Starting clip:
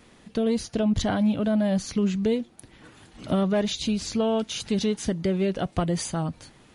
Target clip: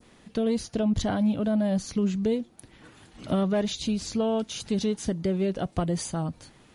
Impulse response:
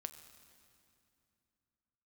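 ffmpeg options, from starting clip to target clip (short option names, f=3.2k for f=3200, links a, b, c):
-af "adynamicequalizer=threshold=0.00447:dfrequency=2300:dqfactor=0.71:tfrequency=2300:tqfactor=0.71:attack=5:release=100:ratio=0.375:range=2:mode=cutabove:tftype=bell,volume=-1.5dB"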